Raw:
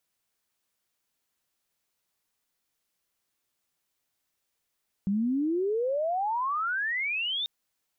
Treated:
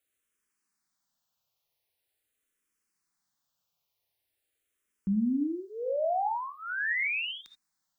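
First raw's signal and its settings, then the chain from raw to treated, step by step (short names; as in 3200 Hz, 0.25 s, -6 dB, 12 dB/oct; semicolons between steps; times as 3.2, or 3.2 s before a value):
chirp logarithmic 190 Hz -> 3700 Hz -23.5 dBFS -> -27.5 dBFS 2.39 s
non-linear reverb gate 0.1 s rising, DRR 7.5 dB; endless phaser -0.44 Hz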